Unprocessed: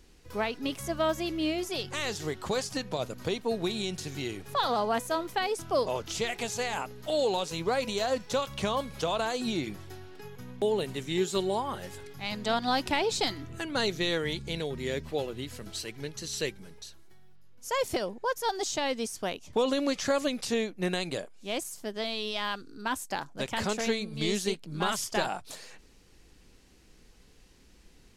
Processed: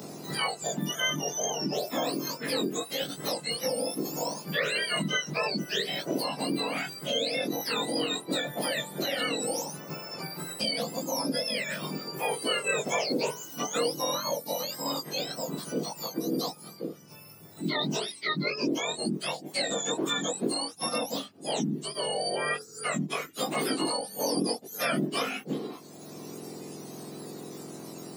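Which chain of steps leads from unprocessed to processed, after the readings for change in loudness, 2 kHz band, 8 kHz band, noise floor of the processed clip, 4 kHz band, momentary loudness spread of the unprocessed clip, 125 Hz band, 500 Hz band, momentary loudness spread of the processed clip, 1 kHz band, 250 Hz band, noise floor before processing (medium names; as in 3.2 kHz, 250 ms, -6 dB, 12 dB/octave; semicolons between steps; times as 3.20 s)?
+1.0 dB, +2.5 dB, +4.5 dB, -48 dBFS, +3.5 dB, 10 LU, +0.5 dB, -1.5 dB, 12 LU, -2.0 dB, +1.5 dB, -57 dBFS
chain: spectrum inverted on a logarithmic axis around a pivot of 1.4 kHz; chorus voices 6, 0.17 Hz, delay 20 ms, depth 1.7 ms; three bands compressed up and down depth 70%; trim +5.5 dB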